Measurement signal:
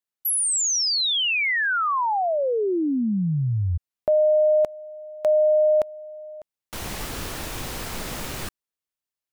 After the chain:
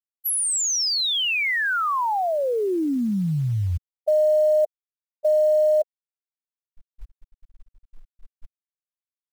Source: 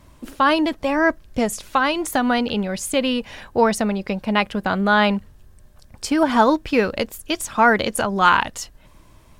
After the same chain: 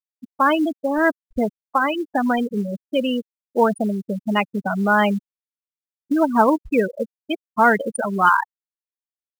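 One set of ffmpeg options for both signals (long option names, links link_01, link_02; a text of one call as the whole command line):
ffmpeg -i in.wav -af "afftfilt=real='re*gte(hypot(re,im),0.282)':imag='im*gte(hypot(re,im),0.282)':win_size=1024:overlap=0.75,acrusher=bits=8:mode=log:mix=0:aa=0.000001" out.wav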